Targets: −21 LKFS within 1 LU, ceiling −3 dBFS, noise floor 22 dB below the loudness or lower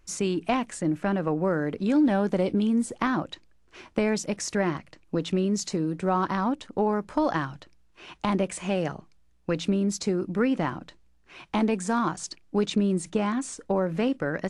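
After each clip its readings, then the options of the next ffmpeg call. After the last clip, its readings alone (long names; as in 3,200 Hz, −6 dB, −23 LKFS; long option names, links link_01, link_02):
integrated loudness −27.0 LKFS; sample peak −9.5 dBFS; target loudness −21.0 LKFS
→ -af "volume=6dB"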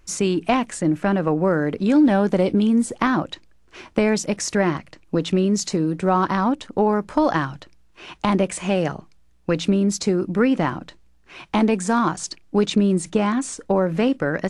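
integrated loudness −21.0 LKFS; sample peak −3.5 dBFS; background noise floor −54 dBFS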